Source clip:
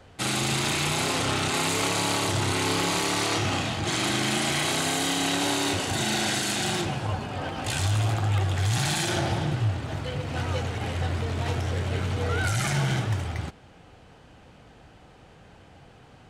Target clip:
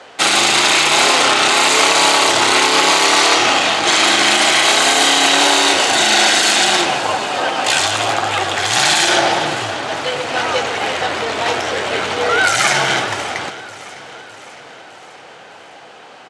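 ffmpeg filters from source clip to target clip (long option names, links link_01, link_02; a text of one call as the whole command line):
ffmpeg -i in.wav -af "highpass=500,lowpass=7900,aecho=1:1:608|1216|1824|2432|3040:0.141|0.0791|0.0443|0.0248|0.0139,alimiter=level_in=17.5dB:limit=-1dB:release=50:level=0:latency=1,volume=-1dB" out.wav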